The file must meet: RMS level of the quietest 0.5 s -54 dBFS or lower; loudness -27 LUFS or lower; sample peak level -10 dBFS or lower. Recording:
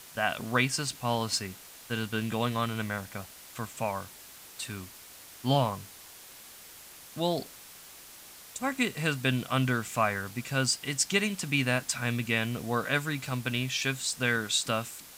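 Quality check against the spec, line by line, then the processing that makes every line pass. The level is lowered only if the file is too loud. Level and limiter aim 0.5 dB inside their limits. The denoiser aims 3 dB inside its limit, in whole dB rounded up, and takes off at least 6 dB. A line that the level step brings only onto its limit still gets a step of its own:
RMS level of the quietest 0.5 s -50 dBFS: fail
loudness -30.0 LUFS: OK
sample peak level -10.5 dBFS: OK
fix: denoiser 7 dB, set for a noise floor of -50 dBFS

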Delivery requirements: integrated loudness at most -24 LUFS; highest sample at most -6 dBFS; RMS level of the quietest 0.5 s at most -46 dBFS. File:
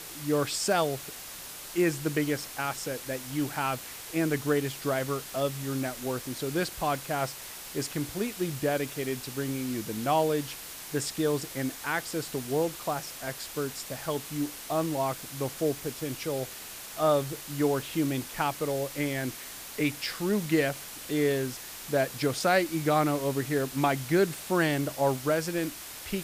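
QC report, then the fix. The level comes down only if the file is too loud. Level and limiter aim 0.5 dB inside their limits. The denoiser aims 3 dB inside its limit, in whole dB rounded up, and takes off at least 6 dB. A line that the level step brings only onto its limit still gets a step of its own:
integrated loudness -30.0 LUFS: OK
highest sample -11.5 dBFS: OK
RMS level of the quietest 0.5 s -43 dBFS: fail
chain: denoiser 6 dB, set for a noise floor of -43 dBFS

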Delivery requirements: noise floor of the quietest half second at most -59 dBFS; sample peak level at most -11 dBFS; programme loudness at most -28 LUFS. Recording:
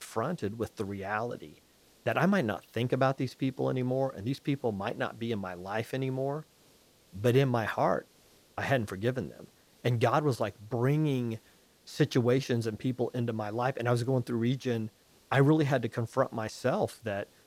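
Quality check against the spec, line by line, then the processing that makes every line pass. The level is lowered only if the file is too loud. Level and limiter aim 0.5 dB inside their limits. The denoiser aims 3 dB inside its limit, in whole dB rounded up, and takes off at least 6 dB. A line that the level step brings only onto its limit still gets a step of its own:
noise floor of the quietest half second -62 dBFS: OK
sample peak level -13.0 dBFS: OK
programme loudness -31.0 LUFS: OK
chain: none

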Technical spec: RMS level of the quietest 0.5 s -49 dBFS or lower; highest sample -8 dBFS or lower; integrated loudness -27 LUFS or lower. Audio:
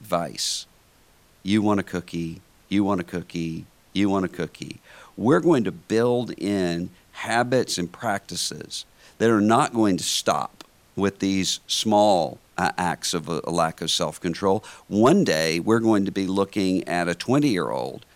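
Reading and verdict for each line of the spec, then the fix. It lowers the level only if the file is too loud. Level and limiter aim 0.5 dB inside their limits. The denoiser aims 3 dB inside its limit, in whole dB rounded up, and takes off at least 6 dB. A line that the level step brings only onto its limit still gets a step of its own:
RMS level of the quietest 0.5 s -57 dBFS: OK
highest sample -5.0 dBFS: fail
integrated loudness -23.0 LUFS: fail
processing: gain -4.5 dB

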